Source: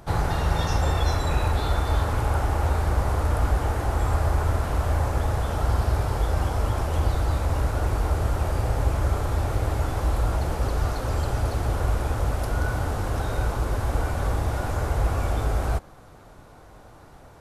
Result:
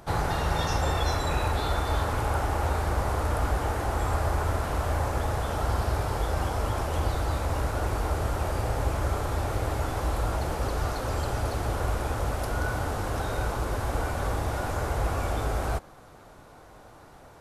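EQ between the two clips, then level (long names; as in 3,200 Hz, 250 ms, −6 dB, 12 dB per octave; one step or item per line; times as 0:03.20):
low-shelf EQ 180 Hz −6 dB
0.0 dB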